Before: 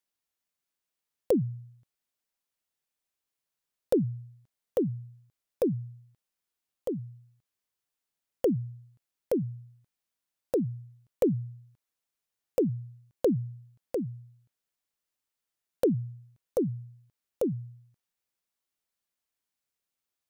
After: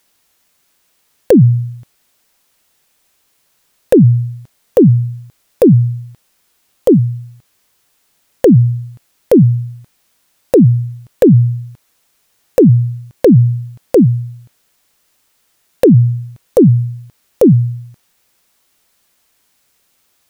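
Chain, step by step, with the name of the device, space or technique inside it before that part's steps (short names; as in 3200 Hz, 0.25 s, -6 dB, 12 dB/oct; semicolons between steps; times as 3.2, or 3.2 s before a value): loud club master (compressor 1.5:1, threshold -30 dBFS, peak gain reduction 4 dB; hard clip -20 dBFS, distortion -26 dB; maximiser +28 dB); gain -1 dB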